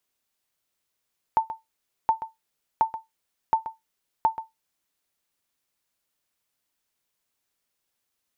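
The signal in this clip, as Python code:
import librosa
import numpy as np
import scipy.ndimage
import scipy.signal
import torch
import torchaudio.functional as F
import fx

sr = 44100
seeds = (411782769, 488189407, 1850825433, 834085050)

y = fx.sonar_ping(sr, hz=892.0, decay_s=0.17, every_s=0.72, pings=5, echo_s=0.13, echo_db=-13.0, level_db=-11.5)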